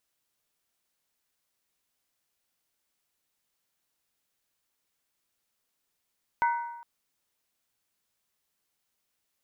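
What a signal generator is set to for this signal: skin hit length 0.41 s, lowest mode 942 Hz, modes 4, decay 1.00 s, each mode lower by 7.5 dB, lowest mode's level -20.5 dB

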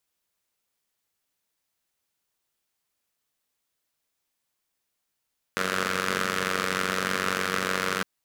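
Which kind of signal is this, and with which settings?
four-cylinder engine model, steady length 2.46 s, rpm 2800, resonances 220/450/1300 Hz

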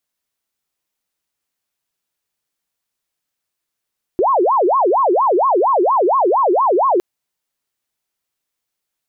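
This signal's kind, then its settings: siren wail 345–1100 Hz 4.3 per s sine -11 dBFS 2.81 s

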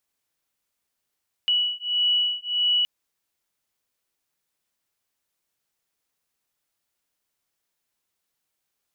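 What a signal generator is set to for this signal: beating tones 2.94 kHz, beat 1.6 Hz, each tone -23.5 dBFS 1.37 s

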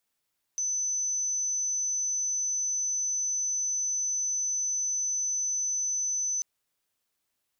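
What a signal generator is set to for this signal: tone sine 6.05 kHz -26.5 dBFS 5.84 s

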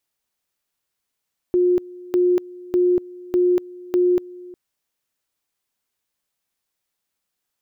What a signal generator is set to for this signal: two-level tone 358 Hz -13.5 dBFS, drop 21.5 dB, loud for 0.24 s, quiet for 0.36 s, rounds 5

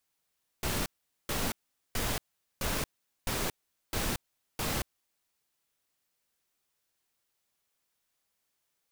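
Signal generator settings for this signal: noise bursts pink, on 0.23 s, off 0.43 s, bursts 7, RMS -31.5 dBFS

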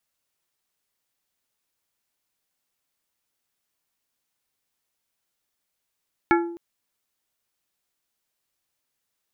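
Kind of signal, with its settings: glass hit plate, length 0.26 s, lowest mode 341 Hz, modes 5, decay 0.70 s, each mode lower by 2 dB, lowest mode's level -15 dB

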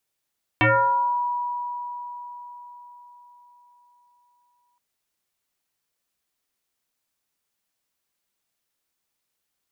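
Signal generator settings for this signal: FM tone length 4.17 s, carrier 972 Hz, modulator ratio 0.44, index 4.4, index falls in 0.76 s exponential, decay 4.75 s, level -14 dB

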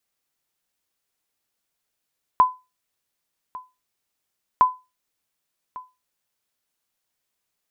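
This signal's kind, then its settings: sonar ping 1.01 kHz, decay 0.25 s, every 2.21 s, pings 2, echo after 1.15 s, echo -20.5 dB -7 dBFS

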